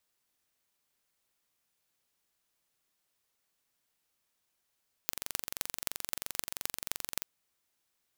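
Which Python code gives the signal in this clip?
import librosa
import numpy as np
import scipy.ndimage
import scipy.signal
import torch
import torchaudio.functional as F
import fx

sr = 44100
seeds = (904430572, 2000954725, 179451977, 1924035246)

y = fx.impulse_train(sr, length_s=2.15, per_s=23.0, accent_every=6, level_db=-3.0)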